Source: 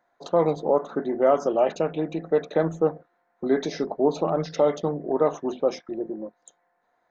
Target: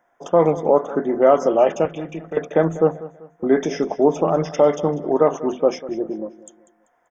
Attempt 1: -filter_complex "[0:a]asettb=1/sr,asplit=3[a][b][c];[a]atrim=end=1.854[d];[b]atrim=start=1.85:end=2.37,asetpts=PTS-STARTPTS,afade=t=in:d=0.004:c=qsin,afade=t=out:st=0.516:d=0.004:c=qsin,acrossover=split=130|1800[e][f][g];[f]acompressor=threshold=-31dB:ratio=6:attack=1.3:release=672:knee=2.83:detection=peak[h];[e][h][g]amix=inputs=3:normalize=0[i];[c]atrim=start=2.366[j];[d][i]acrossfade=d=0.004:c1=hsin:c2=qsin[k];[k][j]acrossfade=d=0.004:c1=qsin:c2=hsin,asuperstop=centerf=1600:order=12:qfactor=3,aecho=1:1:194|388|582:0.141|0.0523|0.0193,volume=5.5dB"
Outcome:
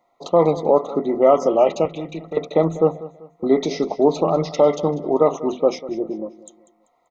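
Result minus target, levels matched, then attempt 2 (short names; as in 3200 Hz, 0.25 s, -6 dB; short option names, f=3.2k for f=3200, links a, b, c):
2000 Hz band -5.0 dB
-filter_complex "[0:a]asettb=1/sr,asplit=3[a][b][c];[a]atrim=end=1.854[d];[b]atrim=start=1.85:end=2.37,asetpts=PTS-STARTPTS,afade=t=in:d=0.004:c=qsin,afade=t=out:st=0.516:d=0.004:c=qsin,acrossover=split=130|1800[e][f][g];[f]acompressor=threshold=-31dB:ratio=6:attack=1.3:release=672:knee=2.83:detection=peak[h];[e][h][g]amix=inputs=3:normalize=0[i];[c]atrim=start=2.366[j];[d][i]acrossfade=d=0.004:c1=hsin:c2=qsin[k];[k][j]acrossfade=d=0.004:c1=qsin:c2=hsin,asuperstop=centerf=4200:order=12:qfactor=3,aecho=1:1:194|388|582:0.141|0.0523|0.0193,volume=5.5dB"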